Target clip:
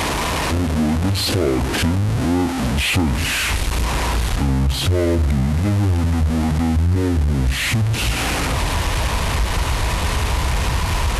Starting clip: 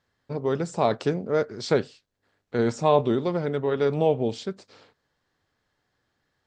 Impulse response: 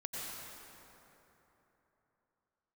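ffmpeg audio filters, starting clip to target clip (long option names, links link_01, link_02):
-af "aeval=exprs='val(0)+0.5*0.0841*sgn(val(0))':channel_layout=same,asubboost=boost=6.5:cutoff=170,acontrast=73,highpass=58,asetrate=25442,aresample=44100,acompressor=threshold=-18dB:ratio=2.5,volume=1dB"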